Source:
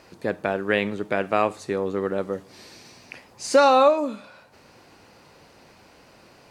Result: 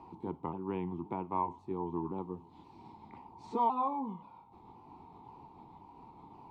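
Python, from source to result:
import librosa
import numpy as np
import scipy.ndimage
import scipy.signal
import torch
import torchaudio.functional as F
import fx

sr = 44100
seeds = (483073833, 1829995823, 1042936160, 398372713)

y = fx.pitch_ramps(x, sr, semitones=-3.5, every_ms=528)
y = fx.curve_eq(y, sr, hz=(360.0, 580.0, 920.0, 1600.0, 2300.0, 3200.0, 5500.0), db=(0, -18, 12, -29, -15, -16, -26))
y = fx.band_squash(y, sr, depth_pct=40)
y = y * librosa.db_to_amplitude(-8.5)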